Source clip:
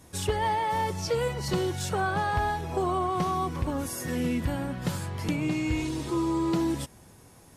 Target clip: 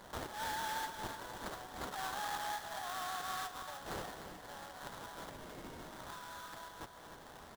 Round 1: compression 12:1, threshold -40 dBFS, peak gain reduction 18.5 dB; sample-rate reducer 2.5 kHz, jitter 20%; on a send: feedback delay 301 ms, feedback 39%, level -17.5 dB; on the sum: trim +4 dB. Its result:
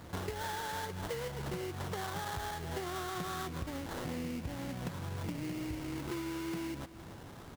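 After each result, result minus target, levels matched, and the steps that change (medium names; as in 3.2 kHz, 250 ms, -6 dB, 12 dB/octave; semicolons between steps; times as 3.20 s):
echo-to-direct -8.5 dB; 500 Hz band +3.5 dB
change: feedback delay 301 ms, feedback 39%, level -9 dB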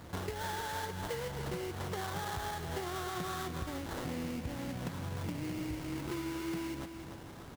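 500 Hz band +3.5 dB
add after compression: steep high-pass 600 Hz 96 dB/octave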